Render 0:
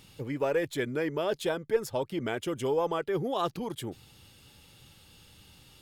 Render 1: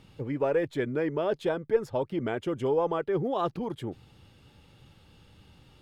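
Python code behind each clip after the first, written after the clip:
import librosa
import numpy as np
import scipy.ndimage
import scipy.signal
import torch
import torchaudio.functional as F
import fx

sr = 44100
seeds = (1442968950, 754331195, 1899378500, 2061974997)

y = fx.lowpass(x, sr, hz=1400.0, slope=6)
y = y * 10.0 ** (2.5 / 20.0)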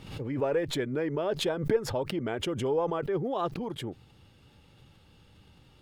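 y = fx.pre_swell(x, sr, db_per_s=78.0)
y = y * 10.0 ** (-2.0 / 20.0)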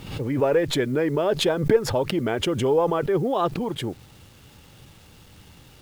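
y = fx.quant_dither(x, sr, seeds[0], bits=10, dither='none')
y = y * 10.0 ** (7.5 / 20.0)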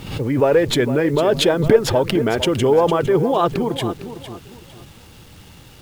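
y = fx.echo_feedback(x, sr, ms=456, feedback_pct=29, wet_db=-12)
y = y * 10.0 ** (5.5 / 20.0)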